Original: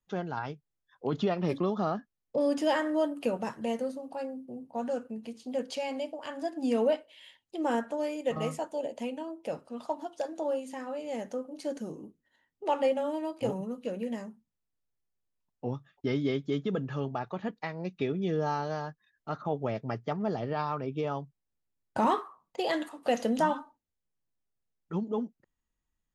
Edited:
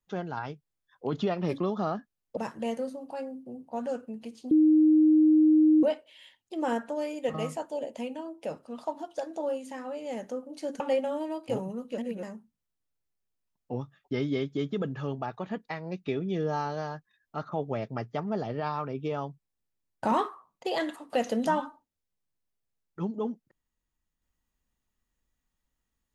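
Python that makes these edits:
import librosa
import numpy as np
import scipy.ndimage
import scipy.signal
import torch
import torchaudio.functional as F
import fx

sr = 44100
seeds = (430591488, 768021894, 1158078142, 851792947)

y = fx.edit(x, sr, fx.cut(start_s=2.37, length_s=1.02),
    fx.bleep(start_s=5.53, length_s=1.32, hz=310.0, db=-16.5),
    fx.cut(start_s=11.82, length_s=0.91),
    fx.reverse_span(start_s=13.91, length_s=0.25), tone=tone)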